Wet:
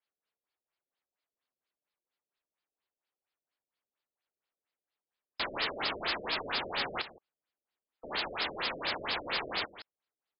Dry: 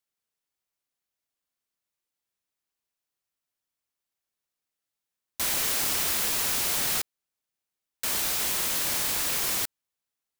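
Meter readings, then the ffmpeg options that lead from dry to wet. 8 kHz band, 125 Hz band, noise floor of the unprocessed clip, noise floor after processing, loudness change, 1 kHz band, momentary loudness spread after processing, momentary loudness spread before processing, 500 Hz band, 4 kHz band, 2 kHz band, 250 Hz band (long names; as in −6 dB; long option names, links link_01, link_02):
below −40 dB, −7.5 dB, below −85 dBFS, below −85 dBFS, −9.0 dB, +0.5 dB, 9 LU, 6 LU, +1.0 dB, −3.5 dB, −1.0 dB, −2.5 dB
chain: -af "bass=frequency=250:gain=-11,treble=frequency=4000:gain=3,aecho=1:1:165:0.211,afftfilt=real='re*lt(b*sr/1024,620*pow(5300/620,0.5+0.5*sin(2*PI*4.3*pts/sr)))':imag='im*lt(b*sr/1024,620*pow(5300/620,0.5+0.5*sin(2*PI*4.3*pts/sr)))':win_size=1024:overlap=0.75,volume=2dB"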